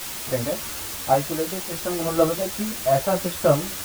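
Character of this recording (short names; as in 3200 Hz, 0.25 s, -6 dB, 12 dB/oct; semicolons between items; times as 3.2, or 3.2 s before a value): random-step tremolo, depth 75%; a quantiser's noise floor 6-bit, dither triangular; a shimmering, thickened sound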